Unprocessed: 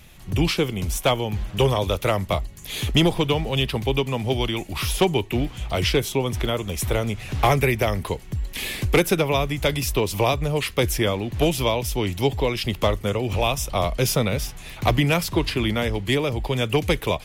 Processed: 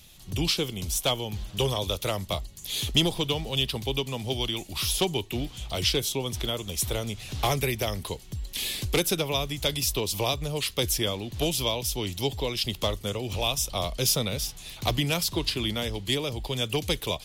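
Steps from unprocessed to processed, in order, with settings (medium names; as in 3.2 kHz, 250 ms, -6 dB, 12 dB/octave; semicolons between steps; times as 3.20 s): resonant high shelf 2.8 kHz +8 dB, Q 1.5; trim -7.5 dB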